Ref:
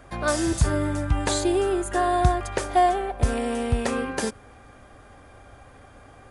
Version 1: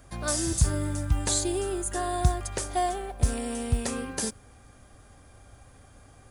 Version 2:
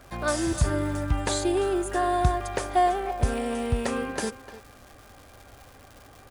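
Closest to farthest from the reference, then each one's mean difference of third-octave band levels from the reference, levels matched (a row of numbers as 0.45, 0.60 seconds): 2, 1; 3.0, 4.0 decibels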